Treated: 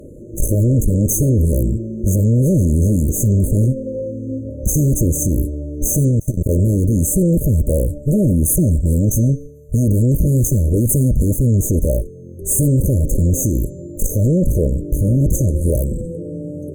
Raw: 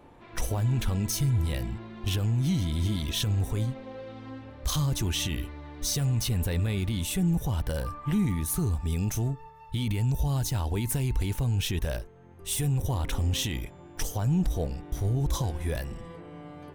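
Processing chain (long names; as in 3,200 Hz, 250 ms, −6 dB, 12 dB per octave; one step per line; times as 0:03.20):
harmonic generator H 4 −9 dB, 5 −10 dB, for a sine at −17.5 dBFS
hum removal 281.8 Hz, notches 32
0:06.08–0:06.49: output level in coarse steps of 23 dB
brick-wall band-stop 630–6,200 Hz
level +9 dB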